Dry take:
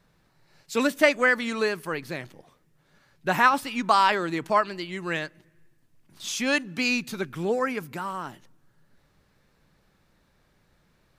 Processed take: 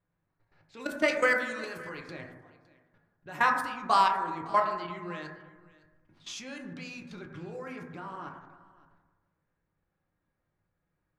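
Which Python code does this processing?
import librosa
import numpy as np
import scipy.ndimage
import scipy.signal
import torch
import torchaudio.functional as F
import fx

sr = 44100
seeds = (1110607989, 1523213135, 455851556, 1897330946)

y = fx.high_shelf(x, sr, hz=2100.0, db=8.5, at=(1.08, 2.11))
y = fx.env_lowpass(y, sr, base_hz=2300.0, full_db=-19.5)
y = fx.level_steps(y, sr, step_db=20)
y = fx.high_shelf(y, sr, hz=6300.0, db=8.0, at=(5.22, 6.44))
y = y + 10.0 ** (-21.5 / 20.0) * np.pad(y, (int(560 * sr / 1000.0), 0))[:len(y)]
y = fx.rev_fdn(y, sr, rt60_s=1.3, lf_ratio=1.0, hf_ratio=0.25, size_ms=57.0, drr_db=1.0)
y = fx.end_taper(y, sr, db_per_s=140.0)
y = y * 10.0 ** (-3.5 / 20.0)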